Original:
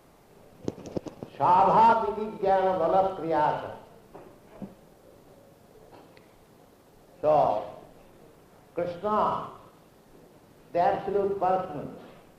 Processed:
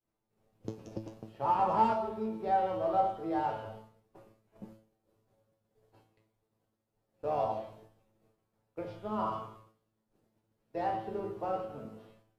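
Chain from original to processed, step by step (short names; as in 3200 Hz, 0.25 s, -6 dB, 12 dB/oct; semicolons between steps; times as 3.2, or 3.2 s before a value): expander -43 dBFS; low shelf 200 Hz +6 dB; resonator 110 Hz, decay 0.29 s, harmonics all, mix 90%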